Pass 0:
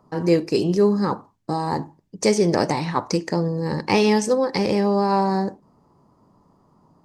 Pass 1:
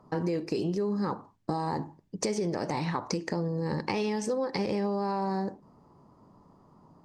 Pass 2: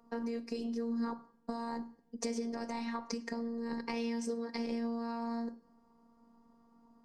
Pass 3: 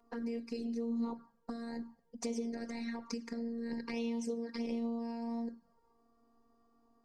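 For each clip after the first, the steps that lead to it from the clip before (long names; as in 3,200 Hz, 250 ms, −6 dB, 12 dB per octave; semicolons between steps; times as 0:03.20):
high-shelf EQ 7,400 Hz −8 dB; brickwall limiter −13 dBFS, peak gain reduction 7.5 dB; downward compressor, threshold −27 dBFS, peak gain reduction 10 dB
phases set to zero 232 Hz; on a send at −13 dB: convolution reverb RT60 0.80 s, pre-delay 4 ms; on the sum: level −5 dB
flanger swept by the level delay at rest 2.9 ms, full sweep at −32 dBFS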